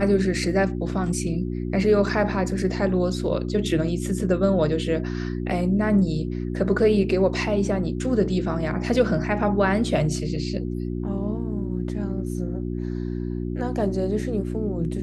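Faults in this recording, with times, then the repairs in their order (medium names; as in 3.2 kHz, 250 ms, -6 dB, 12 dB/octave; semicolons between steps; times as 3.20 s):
hum 60 Hz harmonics 6 -28 dBFS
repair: de-hum 60 Hz, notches 6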